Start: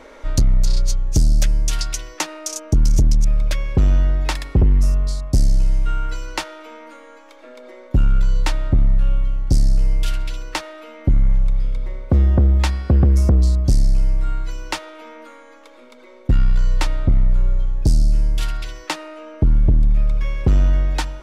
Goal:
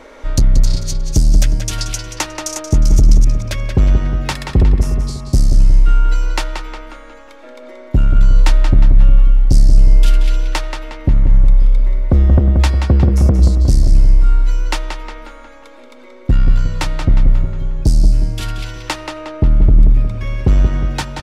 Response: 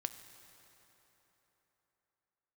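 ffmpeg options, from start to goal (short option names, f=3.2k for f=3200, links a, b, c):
-filter_complex "[0:a]asplit=2[a][b];[b]adelay=180,lowpass=f=4.9k:p=1,volume=-6dB,asplit=2[c][d];[d]adelay=180,lowpass=f=4.9k:p=1,volume=0.52,asplit=2[e][f];[f]adelay=180,lowpass=f=4.9k:p=1,volume=0.52,asplit=2[g][h];[h]adelay=180,lowpass=f=4.9k:p=1,volume=0.52,asplit=2[i][j];[j]adelay=180,lowpass=f=4.9k:p=1,volume=0.52,asplit=2[k][l];[l]adelay=180,lowpass=f=4.9k:p=1,volume=0.52[m];[a][c][e][g][i][k][m]amix=inputs=7:normalize=0,volume=3dB"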